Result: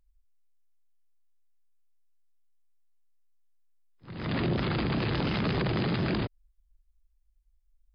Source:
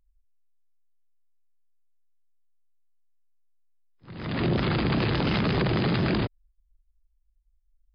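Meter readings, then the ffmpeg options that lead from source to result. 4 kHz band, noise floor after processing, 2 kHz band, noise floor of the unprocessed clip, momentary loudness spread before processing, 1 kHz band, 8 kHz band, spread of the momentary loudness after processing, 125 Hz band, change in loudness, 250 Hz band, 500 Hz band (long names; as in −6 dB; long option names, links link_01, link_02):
−4.0 dB, −70 dBFS, −3.5 dB, −70 dBFS, 9 LU, −3.5 dB, can't be measured, 8 LU, −3.5 dB, −4.0 dB, −3.5 dB, −4.0 dB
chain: -af "alimiter=limit=-20.5dB:level=0:latency=1:release=139"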